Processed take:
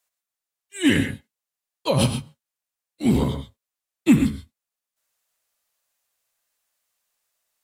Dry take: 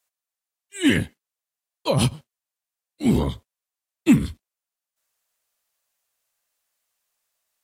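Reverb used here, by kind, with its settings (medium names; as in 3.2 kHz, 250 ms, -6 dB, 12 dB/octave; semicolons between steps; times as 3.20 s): gated-style reverb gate 150 ms rising, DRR 7.5 dB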